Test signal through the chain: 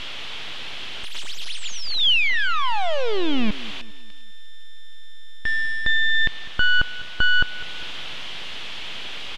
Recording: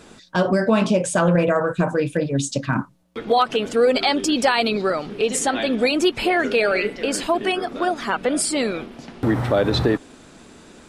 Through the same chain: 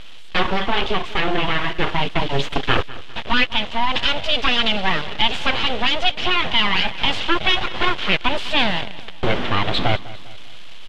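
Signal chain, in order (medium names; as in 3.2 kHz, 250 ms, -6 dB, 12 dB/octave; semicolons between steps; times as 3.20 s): one-bit delta coder 64 kbps, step -29.5 dBFS; gain riding within 5 dB 0.5 s; full-wave rectifier; resonant low-pass 3.2 kHz, resonance Q 3.5; on a send: feedback delay 201 ms, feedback 44%, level -18 dB; on the sum: trim +1.5 dB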